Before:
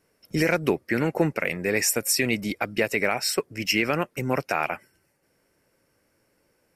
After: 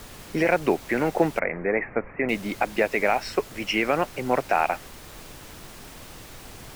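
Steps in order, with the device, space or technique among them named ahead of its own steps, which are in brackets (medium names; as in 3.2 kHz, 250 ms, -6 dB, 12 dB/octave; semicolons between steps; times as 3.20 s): horn gramophone (band-pass 190–3100 Hz; peaking EQ 750 Hz +7 dB 0.77 oct; wow and flutter; pink noise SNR 16 dB); 1.39–2.29 s: steep low-pass 2.3 kHz 72 dB/octave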